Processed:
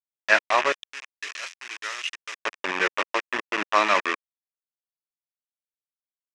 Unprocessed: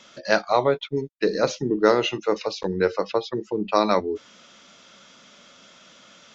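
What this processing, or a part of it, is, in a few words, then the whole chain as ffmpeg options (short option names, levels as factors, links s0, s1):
hand-held game console: -filter_complex "[0:a]acrusher=bits=3:mix=0:aa=0.000001,highpass=440,equalizer=f=480:t=q:w=4:g=-10,equalizer=f=780:t=q:w=4:g=-4,equalizer=f=1100:t=q:w=4:g=4,equalizer=f=1800:t=q:w=4:g=8,equalizer=f=2500:t=q:w=4:g=9,equalizer=f=4300:t=q:w=4:g=-8,lowpass=f=5700:w=0.5412,lowpass=f=5700:w=1.3066,asettb=1/sr,asplit=3[s0][s1][s2];[s0]atrim=end=0.724[s3];[s1]atrim=start=0.72:end=2.41,asetpts=PTS-STARTPTS,afade=t=in:d=0.004:c=qsin,afade=t=out:st=1.686:d=0.004:c=qsin,aderivative[s4];[s2]atrim=start=2.406[s5];[s3][s4]acrossfade=d=0.004:c1=hsin:c2=qsin[s6];[s6][s5]acrossfade=d=0.004:c1=qsin:c2=hsin"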